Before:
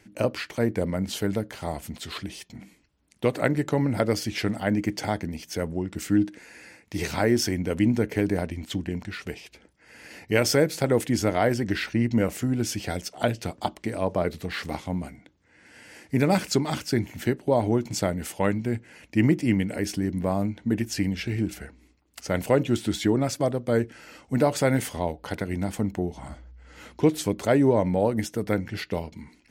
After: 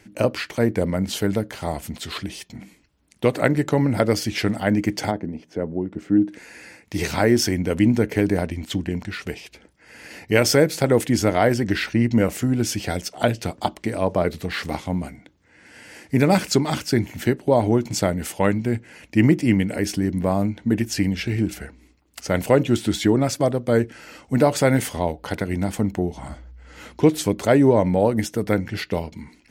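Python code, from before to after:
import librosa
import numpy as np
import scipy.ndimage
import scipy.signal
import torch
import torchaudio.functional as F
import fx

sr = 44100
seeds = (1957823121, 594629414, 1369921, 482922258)

y = fx.bandpass_q(x, sr, hz=340.0, q=0.63, at=(5.1, 6.28), fade=0.02)
y = y * librosa.db_to_amplitude(4.5)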